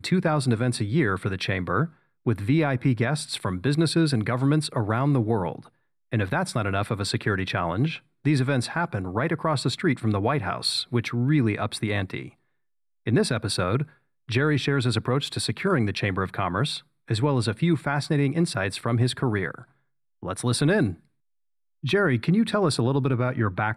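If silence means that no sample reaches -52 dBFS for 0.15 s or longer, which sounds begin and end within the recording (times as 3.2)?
2.26–5.69
6.12–8
8.25–12.34
13.06–13.96
14.28–16.83
17.08–19.71
20.22–21.05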